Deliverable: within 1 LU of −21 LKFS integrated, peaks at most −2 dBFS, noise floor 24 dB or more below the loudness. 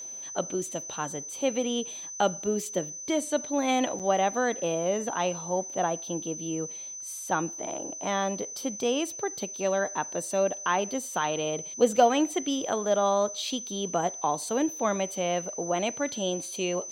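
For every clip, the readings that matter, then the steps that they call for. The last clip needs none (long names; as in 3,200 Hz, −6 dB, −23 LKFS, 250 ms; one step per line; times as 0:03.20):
number of dropouts 1; longest dropout 6.9 ms; interfering tone 6,100 Hz; level of the tone −37 dBFS; integrated loudness −28.5 LKFS; sample peak −9.0 dBFS; target loudness −21.0 LKFS
→ repair the gap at 0:03.99, 6.9 ms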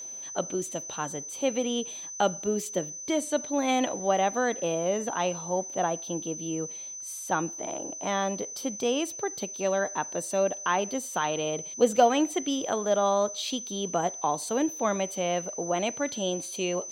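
number of dropouts 0; interfering tone 6,100 Hz; level of the tone −37 dBFS
→ notch filter 6,100 Hz, Q 30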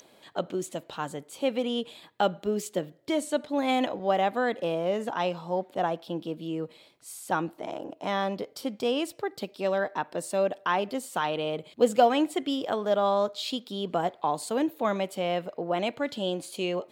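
interfering tone none found; integrated loudness −29.5 LKFS; sample peak −9.0 dBFS; target loudness −21.0 LKFS
→ level +8.5 dB
brickwall limiter −2 dBFS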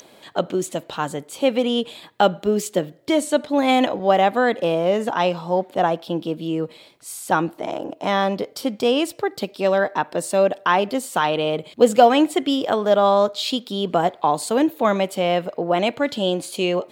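integrated loudness −21.0 LKFS; sample peak −2.0 dBFS; background noise floor −50 dBFS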